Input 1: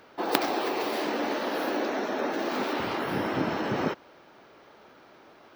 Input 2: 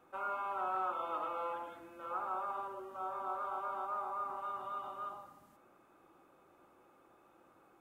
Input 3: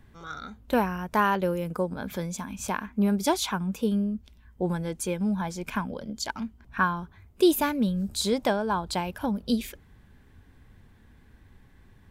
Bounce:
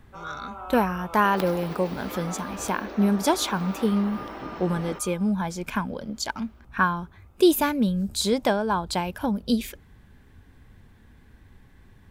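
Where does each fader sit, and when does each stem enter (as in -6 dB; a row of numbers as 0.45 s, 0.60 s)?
-9.5 dB, -1.5 dB, +2.5 dB; 1.05 s, 0.00 s, 0.00 s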